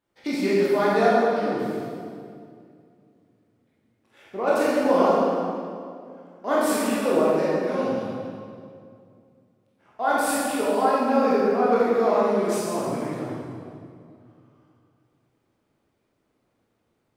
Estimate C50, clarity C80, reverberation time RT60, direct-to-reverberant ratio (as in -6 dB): -3.0 dB, -1.0 dB, 2.3 s, -8.0 dB